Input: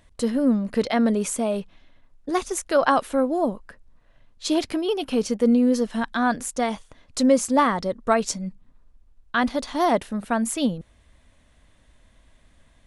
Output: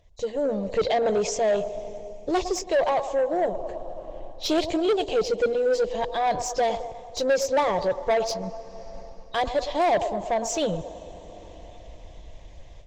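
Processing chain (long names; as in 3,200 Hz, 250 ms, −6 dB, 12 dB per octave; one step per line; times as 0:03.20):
hearing-aid frequency compression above 3,600 Hz 1.5 to 1
0:03.36–0:04.61: low-shelf EQ 65 Hz +4 dB
delay with a band-pass on its return 108 ms, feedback 61%, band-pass 740 Hz, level −13.5 dB
on a send at −21 dB: convolution reverb RT60 4.3 s, pre-delay 100 ms
on the sum: automatic gain control gain up to 14.5 dB
high-frequency loss of the air 54 metres
phaser with its sweep stopped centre 580 Hz, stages 4
soft clipping −17 dBFS, distortion −9 dB
Opus 24 kbit/s 48,000 Hz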